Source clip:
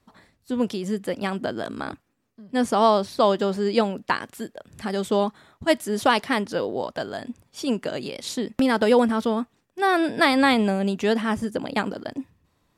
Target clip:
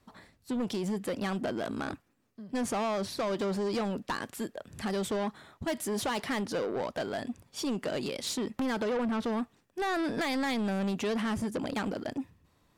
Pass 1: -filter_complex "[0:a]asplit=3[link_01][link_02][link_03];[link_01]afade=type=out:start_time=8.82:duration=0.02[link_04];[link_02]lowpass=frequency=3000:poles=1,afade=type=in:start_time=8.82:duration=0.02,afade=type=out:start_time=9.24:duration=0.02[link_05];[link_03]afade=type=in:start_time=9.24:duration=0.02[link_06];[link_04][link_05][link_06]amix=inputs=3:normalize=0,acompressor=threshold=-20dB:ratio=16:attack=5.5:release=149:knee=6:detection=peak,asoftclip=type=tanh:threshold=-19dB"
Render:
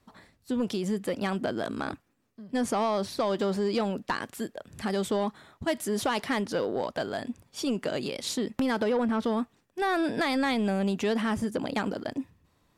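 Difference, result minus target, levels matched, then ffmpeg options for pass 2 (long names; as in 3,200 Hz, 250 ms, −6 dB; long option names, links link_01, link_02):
soft clipping: distortion −9 dB
-filter_complex "[0:a]asplit=3[link_01][link_02][link_03];[link_01]afade=type=out:start_time=8.82:duration=0.02[link_04];[link_02]lowpass=frequency=3000:poles=1,afade=type=in:start_time=8.82:duration=0.02,afade=type=out:start_time=9.24:duration=0.02[link_05];[link_03]afade=type=in:start_time=9.24:duration=0.02[link_06];[link_04][link_05][link_06]amix=inputs=3:normalize=0,acompressor=threshold=-20dB:ratio=16:attack=5.5:release=149:knee=6:detection=peak,asoftclip=type=tanh:threshold=-27dB"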